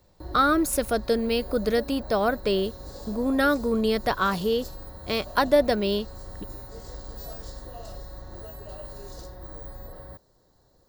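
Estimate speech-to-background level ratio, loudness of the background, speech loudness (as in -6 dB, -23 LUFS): 16.0 dB, -41.0 LUFS, -25.0 LUFS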